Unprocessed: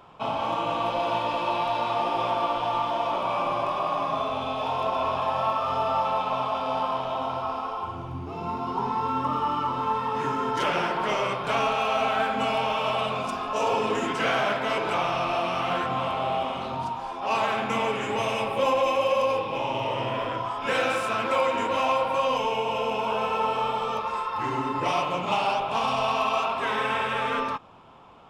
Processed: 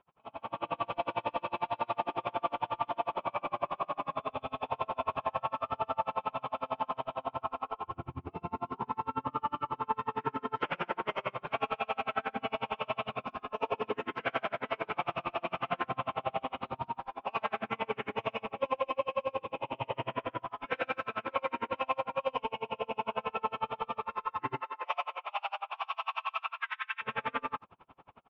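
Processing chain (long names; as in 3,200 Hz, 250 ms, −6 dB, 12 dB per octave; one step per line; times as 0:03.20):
0:24.59–0:27.01: high-pass filter 520 Hz → 1,400 Hz 24 dB per octave
automatic gain control gain up to 15 dB
transistor ladder low-pass 3,300 Hz, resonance 25%
far-end echo of a speakerphone 80 ms, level −20 dB
tremolo with a sine in dB 11 Hz, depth 36 dB
level −9 dB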